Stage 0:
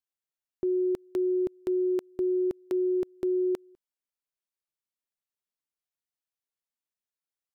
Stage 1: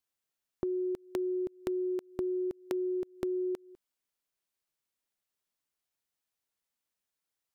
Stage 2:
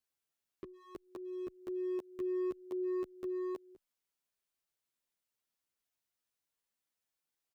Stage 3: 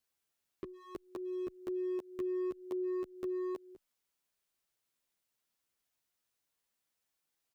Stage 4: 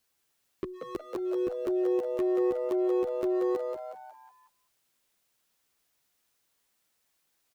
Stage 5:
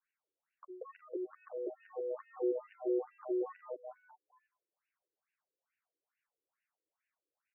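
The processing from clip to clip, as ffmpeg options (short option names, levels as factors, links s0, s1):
-af "acompressor=threshold=0.0141:ratio=6,volume=1.78"
-filter_complex "[0:a]alimiter=level_in=1.19:limit=0.0631:level=0:latency=1:release=371,volume=0.841,asoftclip=type=hard:threshold=0.0224,asplit=2[s0][s1];[s1]adelay=10.4,afreqshift=0.29[s2];[s0][s2]amix=inputs=2:normalize=1,volume=1.12"
-af "acompressor=threshold=0.0112:ratio=3,volume=1.58"
-filter_complex "[0:a]asoftclip=type=hard:threshold=0.0237,asplit=2[s0][s1];[s1]asplit=5[s2][s3][s4][s5][s6];[s2]adelay=182,afreqshift=130,volume=0.501[s7];[s3]adelay=364,afreqshift=260,volume=0.226[s8];[s4]adelay=546,afreqshift=390,volume=0.101[s9];[s5]adelay=728,afreqshift=520,volume=0.0457[s10];[s6]adelay=910,afreqshift=650,volume=0.0207[s11];[s7][s8][s9][s10][s11]amix=inputs=5:normalize=0[s12];[s0][s12]amix=inputs=2:normalize=0,volume=2.66"
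-af "afftfilt=real='re*between(b*sr/1024,370*pow(2100/370,0.5+0.5*sin(2*PI*2.3*pts/sr))/1.41,370*pow(2100/370,0.5+0.5*sin(2*PI*2.3*pts/sr))*1.41)':imag='im*between(b*sr/1024,370*pow(2100/370,0.5+0.5*sin(2*PI*2.3*pts/sr))/1.41,370*pow(2100/370,0.5+0.5*sin(2*PI*2.3*pts/sr))*1.41)':win_size=1024:overlap=0.75,volume=0.596"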